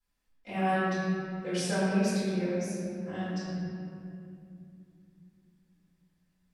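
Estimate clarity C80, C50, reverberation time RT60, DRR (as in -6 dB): -2.0 dB, -4.0 dB, 2.6 s, -16.5 dB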